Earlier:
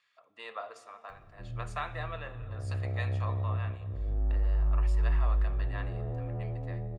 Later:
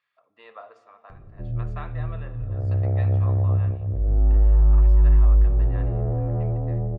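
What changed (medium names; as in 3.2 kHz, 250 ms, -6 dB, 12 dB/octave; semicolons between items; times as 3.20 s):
background +11.5 dB; master: add tape spacing loss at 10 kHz 25 dB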